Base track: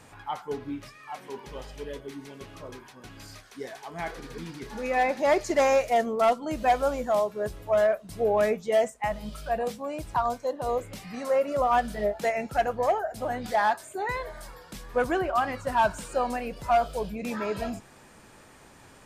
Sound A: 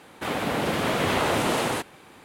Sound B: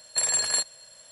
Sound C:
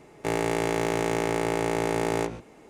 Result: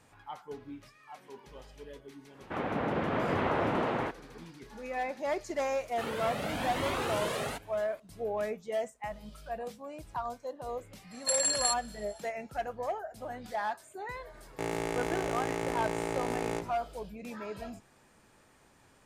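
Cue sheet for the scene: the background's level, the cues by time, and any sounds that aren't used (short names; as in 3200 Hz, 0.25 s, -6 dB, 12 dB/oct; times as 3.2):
base track -10 dB
2.29 add A -5 dB, fades 0.10 s + LPF 1800 Hz
5.76 add A -5 dB + cascading flanger rising 0.94 Hz
11.11 add B -4.5 dB
14.34 add C -7.5 dB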